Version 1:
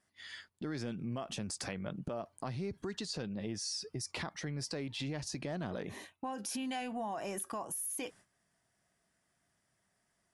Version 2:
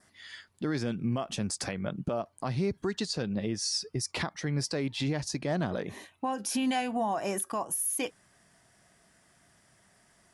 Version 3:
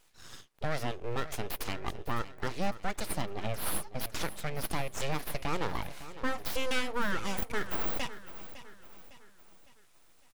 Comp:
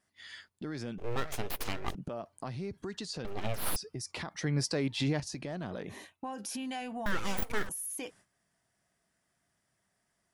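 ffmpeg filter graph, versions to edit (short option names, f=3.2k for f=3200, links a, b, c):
-filter_complex "[2:a]asplit=3[a][b][c];[0:a]asplit=5[d][e][f][g][h];[d]atrim=end=0.982[i];[a]atrim=start=0.978:end=1.952[j];[e]atrim=start=1.948:end=3.252[k];[b]atrim=start=3.248:end=3.762[l];[f]atrim=start=3.758:end=4.312[m];[1:a]atrim=start=4.308:end=5.202[n];[g]atrim=start=5.198:end=7.062[o];[c]atrim=start=7.058:end=7.692[p];[h]atrim=start=7.688[q];[i][j]acrossfade=d=0.004:c1=hsin:c2=hsin[r];[r][k]acrossfade=d=0.004:c1=hsin:c2=hsin[s];[s][l]acrossfade=d=0.004:c1=hsin:c2=hsin[t];[t][m]acrossfade=d=0.004:c1=hsin:c2=hsin[u];[u][n]acrossfade=d=0.004:c1=hsin:c2=hsin[v];[v][o]acrossfade=d=0.004:c1=hsin:c2=hsin[w];[w][p]acrossfade=d=0.004:c1=hsin:c2=hsin[x];[x][q]acrossfade=d=0.004:c1=hsin:c2=hsin"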